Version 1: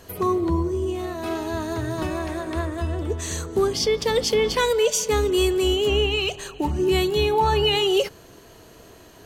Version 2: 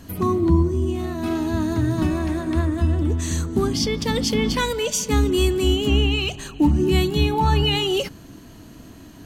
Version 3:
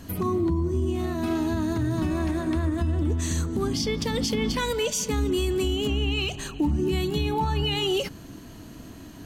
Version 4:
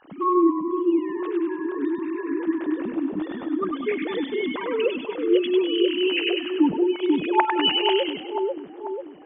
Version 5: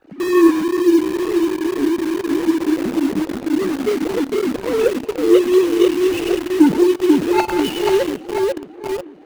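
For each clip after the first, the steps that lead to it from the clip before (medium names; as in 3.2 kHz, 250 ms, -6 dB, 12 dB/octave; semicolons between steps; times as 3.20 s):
resonant low shelf 340 Hz +7 dB, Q 3
compression 1.5:1, threshold -25 dBFS, peak gain reduction 5 dB; peak limiter -17 dBFS, peak gain reduction 5.5 dB
formants replaced by sine waves; two-band feedback delay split 900 Hz, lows 490 ms, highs 99 ms, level -3 dB
median filter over 41 samples; in parallel at -4 dB: bit crusher 5-bit; on the sum: trim +4 dB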